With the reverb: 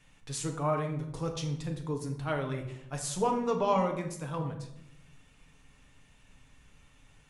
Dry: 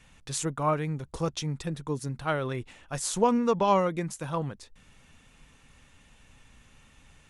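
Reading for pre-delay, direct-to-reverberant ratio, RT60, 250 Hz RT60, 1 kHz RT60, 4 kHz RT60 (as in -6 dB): 7 ms, 2.0 dB, 0.80 s, 1.2 s, 0.75 s, 0.50 s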